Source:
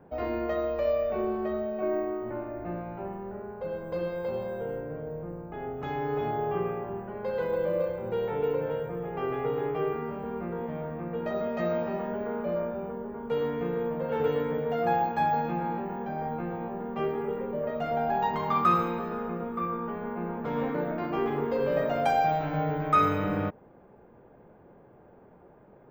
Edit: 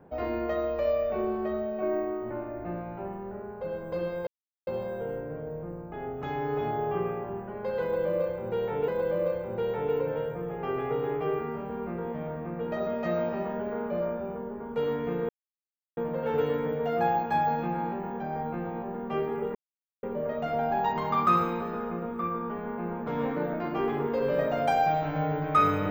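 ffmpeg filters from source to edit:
ffmpeg -i in.wav -filter_complex "[0:a]asplit=5[link_01][link_02][link_03][link_04][link_05];[link_01]atrim=end=4.27,asetpts=PTS-STARTPTS,afade=type=out:start_time=4.266:duration=0.004:curve=hsin,apad=pad_dur=0.4[link_06];[link_02]atrim=start=4.27:end=8.482,asetpts=PTS-STARTPTS,afade=type=in:duration=0.004:curve=hsin[link_07];[link_03]atrim=start=7.418:end=13.83,asetpts=PTS-STARTPTS,afade=type=out:start_time=6.408:duration=0.004:curve=hsin,apad=pad_dur=0.68[link_08];[link_04]atrim=start=13.83:end=17.41,asetpts=PTS-STARTPTS,afade=type=in:duration=0.004:curve=hsin,afade=type=out:start_time=3.576:duration=0.004:curve=hsin,apad=pad_dur=0.48[link_09];[link_05]atrim=start=17.41,asetpts=PTS-STARTPTS,afade=type=in:duration=0.004:curve=hsin[link_10];[link_06][link_07]concat=n=2:v=0:a=1[link_11];[link_08][link_09][link_10]concat=n=3:v=0:a=1[link_12];[link_11][link_12]acrossfade=duration=0.004:curve1=hsin:curve2=hsin" out.wav

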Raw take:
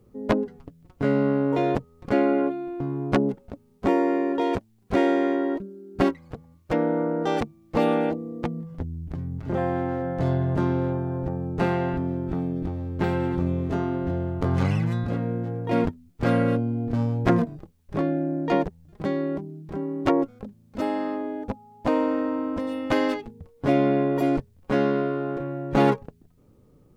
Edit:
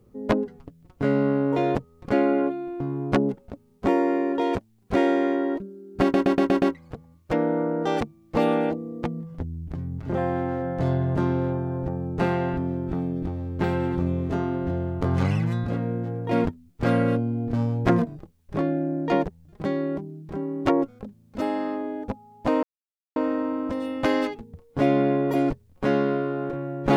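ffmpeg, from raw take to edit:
ffmpeg -i in.wav -filter_complex "[0:a]asplit=7[link_01][link_02][link_03][link_04][link_05][link_06][link_07];[link_01]atrim=end=6.142[link_08];[link_02]atrim=start=6.018:end=6.142[link_09];[link_03]atrim=start=6.018:end=6.142[link_10];[link_04]atrim=start=6.018:end=6.142[link_11];[link_05]atrim=start=6.018:end=6.142[link_12];[link_06]atrim=start=6.018:end=22.03,asetpts=PTS-STARTPTS,afade=type=out:start_time=16.008:duration=0.004:curve=hsin,apad=pad_dur=0.53[link_13];[link_07]atrim=start=22.03,asetpts=PTS-STARTPTS,afade=type=in:duration=0.004:curve=hsin[link_14];[link_08][link_09]acrossfade=duration=0.004:curve1=hsin:curve2=hsin[link_15];[link_15][link_10]acrossfade=duration=0.004:curve1=hsin:curve2=hsin[link_16];[link_16][link_11]acrossfade=duration=0.004:curve1=hsin:curve2=hsin[link_17];[link_17][link_12]acrossfade=duration=0.004:curve1=hsin:curve2=hsin[link_18];[link_13][link_14]concat=n=2:v=0:a=1[link_19];[link_18][link_19]acrossfade=duration=0.004:curve1=hsin:curve2=hsin" out.wav

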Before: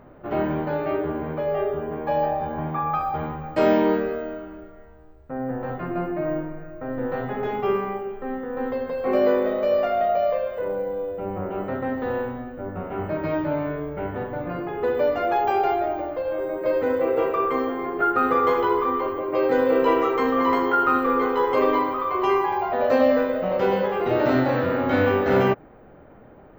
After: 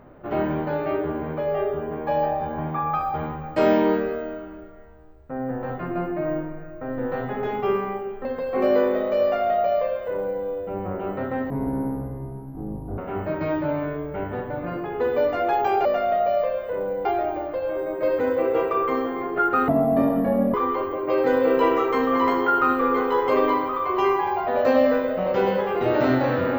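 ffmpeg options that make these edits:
ffmpeg -i in.wav -filter_complex "[0:a]asplit=8[link_01][link_02][link_03][link_04][link_05][link_06][link_07][link_08];[link_01]atrim=end=8.252[link_09];[link_02]atrim=start=8.758:end=12.014[link_10];[link_03]atrim=start=12.01:end=12.81,asetpts=PTS-STARTPTS,asetrate=23814,aresample=44100,atrim=end_sample=65333,asetpts=PTS-STARTPTS[link_11];[link_04]atrim=start=12.806:end=15.682[link_12];[link_05]atrim=start=9.738:end=10.942[link_13];[link_06]atrim=start=15.678:end=18.314[link_14];[link_07]atrim=start=18.31:end=18.79,asetpts=PTS-STARTPTS,asetrate=24696,aresample=44100[link_15];[link_08]atrim=start=18.786[link_16];[link_09][link_10]acrossfade=duration=0.004:curve1=hsin:curve2=hsin[link_17];[link_17][link_11]acrossfade=duration=0.004:curve1=hsin:curve2=hsin[link_18];[link_18][link_12]acrossfade=duration=0.004:curve1=hsin:curve2=hsin[link_19];[link_19][link_13]acrossfade=duration=0.004:curve1=hsin:curve2=hsin[link_20];[link_20][link_14]acrossfade=duration=0.004:curve1=hsin:curve2=hsin[link_21];[link_21][link_15]acrossfade=duration=0.004:curve1=hsin:curve2=hsin[link_22];[link_22][link_16]acrossfade=duration=0.004:curve1=hsin:curve2=hsin" out.wav

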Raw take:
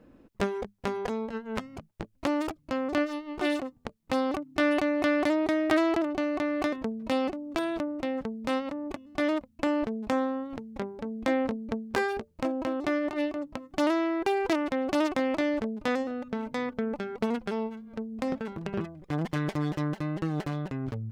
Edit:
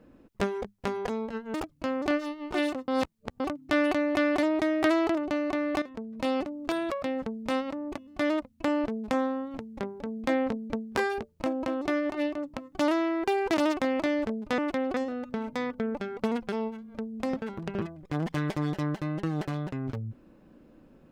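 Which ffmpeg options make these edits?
ffmpeg -i in.wav -filter_complex "[0:a]asplit=10[link_01][link_02][link_03][link_04][link_05][link_06][link_07][link_08][link_09][link_10];[link_01]atrim=end=1.542[link_11];[link_02]atrim=start=2.408:end=3.752[link_12];[link_03]atrim=start=3.748:end=4.272,asetpts=PTS-STARTPTS,areverse[link_13];[link_04]atrim=start=4.268:end=6.69,asetpts=PTS-STARTPTS,afade=type=out:start_time=2.418:duration=0.004:curve=hsin:silence=0.237137[link_14];[link_05]atrim=start=6.69:end=7.774,asetpts=PTS-STARTPTS,afade=type=in:duration=0.53:silence=0.237137[link_15];[link_06]atrim=start=7.77:end=8.02,asetpts=PTS-STARTPTS,asetrate=83349,aresample=44100,atrim=end_sample=5833,asetpts=PTS-STARTPTS[link_16];[link_07]atrim=start=8.016:end=14.562[link_17];[link_08]atrim=start=14.918:end=15.932[link_18];[link_09]atrim=start=14.558:end=14.922[link_19];[link_10]atrim=start=15.928[link_20];[link_11][link_12]acrossfade=duration=0.004:curve1=hsin:curve2=hsin[link_21];[link_21][link_13]acrossfade=duration=0.004:curve1=hsin:curve2=hsin[link_22];[link_14][link_15]concat=n=2:v=0:a=1[link_23];[link_22][link_23]acrossfade=duration=0.004:curve1=hsin:curve2=hsin[link_24];[link_24][link_16]acrossfade=duration=0.004:curve1=hsin:curve2=hsin[link_25];[link_25][link_17]acrossfade=duration=0.004:curve1=hsin:curve2=hsin[link_26];[link_26][link_18]acrossfade=duration=0.004:curve1=hsin:curve2=hsin[link_27];[link_27][link_19]acrossfade=duration=0.004:curve1=hsin:curve2=hsin[link_28];[link_28][link_20]acrossfade=duration=0.004:curve1=hsin:curve2=hsin" out.wav

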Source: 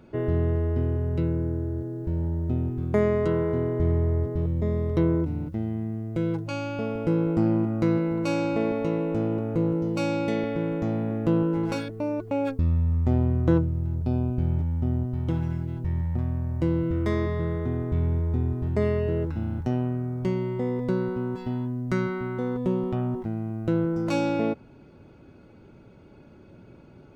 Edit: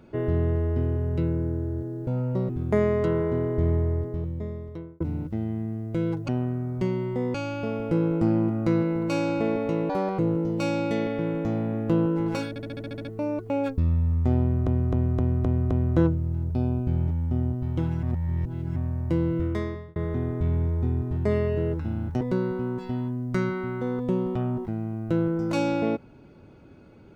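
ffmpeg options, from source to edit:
ffmpeg -i in.wav -filter_complex "[0:a]asplit=25[link_01][link_02][link_03][link_04][link_05][link_06][link_07][link_08][link_09][link_10][link_11][link_12][link_13][link_14][link_15][link_16][link_17][link_18][link_19][link_20][link_21][link_22][link_23][link_24][link_25];[link_01]atrim=end=2.074[link_26];[link_02]atrim=start=2.07:end=2.71,asetpts=PTS-STARTPTS,asetrate=66591,aresample=44100,atrim=end_sample=18691,asetpts=PTS-STARTPTS[link_27];[link_03]atrim=start=2.706:end=5.22,asetpts=PTS-STARTPTS,afade=type=out:start_time=1.254:duration=1.26[link_28];[link_04]atrim=start=5.22:end=6.502,asetpts=PTS-STARTPTS,afade=type=in:duration=0.004:curve=hsin[link_29];[link_05]atrim=start=19.718:end=20.782[link_30];[link_06]atrim=start=6.498:end=9.054[link_31];[link_07]atrim=start=9.05:end=9.56,asetpts=PTS-STARTPTS,asetrate=76293,aresample=44100[link_32];[link_08]atrim=start=9.556:end=11.932[link_33];[link_09]atrim=start=11.858:end=11.932[link_34];[link_10]atrim=start=11.858:end=11.932[link_35];[link_11]atrim=start=11.858:end=11.932[link_36];[link_12]atrim=start=11.858:end=11.932[link_37];[link_13]atrim=start=11.858:end=11.932[link_38];[link_14]atrim=start=11.858:end=11.932[link_39];[link_15]atrim=start=11.858:end=11.932[link_40];[link_16]atrim=start=11.858:end=13.482[link_41];[link_17]atrim=start=13.218:end=13.482[link_42];[link_18]atrim=start=13.218:end=13.482[link_43];[link_19]atrim=start=13.218:end=13.482[link_44];[link_20]atrim=start=13.218:end=13.482[link_45];[link_21]atrim=start=13.218:end=15.542[link_46];[link_22]atrim=start=15.538:end=16.272,asetpts=PTS-STARTPTS,areverse[link_47];[link_23]atrim=start=16.268:end=17.47,asetpts=PTS-STARTPTS,afade=type=out:start_time=0.662:duration=0.54[link_48];[link_24]atrim=start=17.47:end=19.722,asetpts=PTS-STARTPTS,afade=type=in:duration=0.004:curve=hsin[link_49];[link_25]atrim=start=20.778[link_50];[link_26][link_27]acrossfade=duration=0.004:curve1=hsin:curve2=hsin[link_51];[link_28][link_29]concat=n=2:v=0:a=1[link_52];[link_51][link_52]acrossfade=duration=0.004:curve1=hsin:curve2=hsin[link_53];[link_53][link_30]acrossfade=duration=0.004:curve1=hsin:curve2=hsin[link_54];[link_54][link_31]acrossfade=duration=0.004:curve1=hsin:curve2=hsin[link_55];[link_55][link_32]acrossfade=duration=0.004:curve1=hsin:curve2=hsin[link_56];[link_56][link_33]acrossfade=duration=0.004:curve1=hsin:curve2=hsin[link_57];[link_57][link_34]acrossfade=duration=0.004:curve1=hsin:curve2=hsin[link_58];[link_58][link_35]acrossfade=duration=0.004:curve1=hsin:curve2=hsin[link_59];[link_59][link_36]acrossfade=duration=0.004:curve1=hsin:curve2=hsin[link_60];[link_60][link_37]acrossfade=duration=0.004:curve1=hsin:curve2=hsin[link_61];[link_61][link_38]acrossfade=duration=0.004:curve1=hsin:curve2=hsin[link_62];[link_62][link_39]acrossfade=duration=0.004:curve1=hsin:curve2=hsin[link_63];[link_63][link_40]acrossfade=duration=0.004:curve1=hsin:curve2=hsin[link_64];[link_64][link_41]acrossfade=duration=0.004:curve1=hsin:curve2=hsin[link_65];[link_65][link_42]acrossfade=duration=0.004:curve1=hsin:curve2=hsin[link_66];[link_66][link_43]acrossfade=duration=0.004:curve1=hsin:curve2=hsin[link_67];[link_67][link_44]acrossfade=duration=0.004:curve1=hsin:curve2=hsin[link_68];[link_68][link_45]acrossfade=duration=0.004:curve1=hsin:curve2=hsin[link_69];[link_69][link_46]acrossfade=duration=0.004:curve1=hsin:curve2=hsin[link_70];[link_70][link_47]acrossfade=duration=0.004:curve1=hsin:curve2=hsin[link_71];[link_48][link_49]concat=n=2:v=0:a=1[link_72];[link_71][link_72]acrossfade=duration=0.004:curve1=hsin:curve2=hsin[link_73];[link_73][link_50]acrossfade=duration=0.004:curve1=hsin:curve2=hsin" out.wav

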